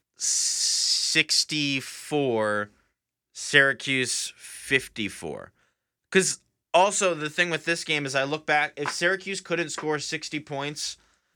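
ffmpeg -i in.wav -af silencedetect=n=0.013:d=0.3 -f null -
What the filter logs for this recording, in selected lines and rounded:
silence_start: 2.65
silence_end: 3.36 | silence_duration: 0.71
silence_start: 5.47
silence_end: 6.12 | silence_duration: 0.66
silence_start: 6.35
silence_end: 6.74 | silence_duration: 0.39
silence_start: 10.93
silence_end: 11.35 | silence_duration: 0.42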